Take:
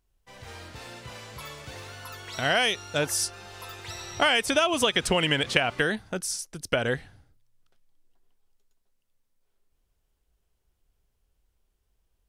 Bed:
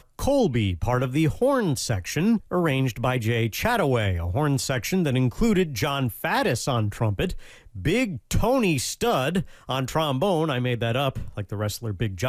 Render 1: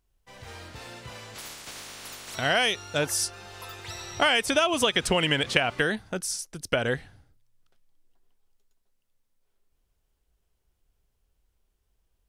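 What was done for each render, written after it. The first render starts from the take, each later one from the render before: 1.34–2.34 s: spectral peaks clipped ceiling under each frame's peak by 25 dB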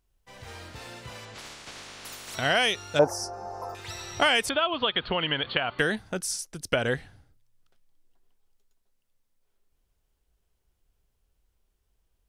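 1.25–2.05 s: distance through air 58 m; 2.99–3.75 s: FFT filter 120 Hz 0 dB, 410 Hz +6 dB, 770 Hz +14 dB, 1.8 kHz -10 dB, 3.4 kHz -28 dB, 5.4 kHz -2 dB, 7.9 kHz -13 dB; 4.49–5.79 s: rippled Chebyshev low-pass 4.5 kHz, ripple 6 dB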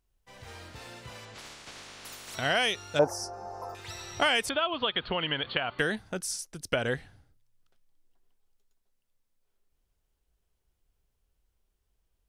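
trim -3 dB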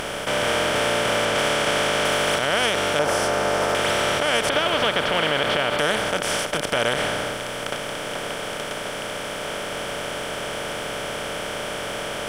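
spectral levelling over time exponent 0.2; peak limiter -10 dBFS, peak gain reduction 7 dB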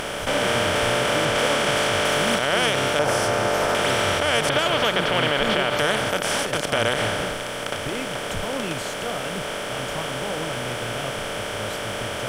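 add bed -9.5 dB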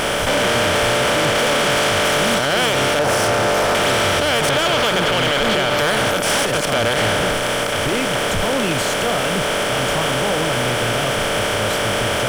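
waveshaping leveller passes 3; peak limiter -12.5 dBFS, peak gain reduction 4 dB

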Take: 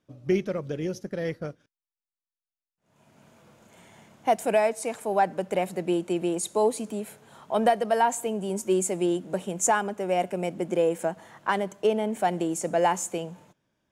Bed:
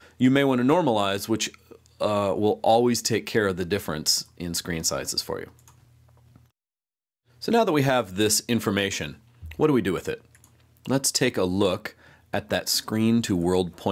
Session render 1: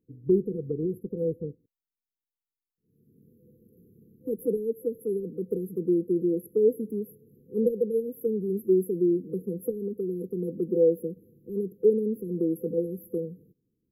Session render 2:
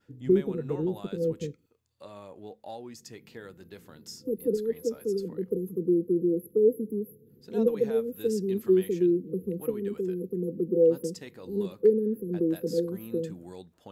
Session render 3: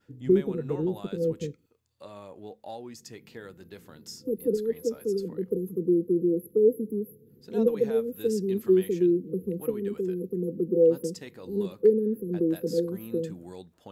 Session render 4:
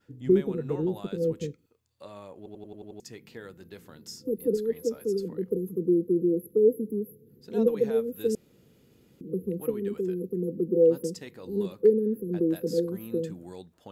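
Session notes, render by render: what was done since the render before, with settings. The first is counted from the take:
FFT band-reject 510–11000 Hz; dynamic bell 910 Hz, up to +7 dB, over -42 dBFS, Q 0.72
add bed -22 dB
trim +1 dB
2.37 s: stutter in place 0.09 s, 7 plays; 8.35–9.21 s: room tone

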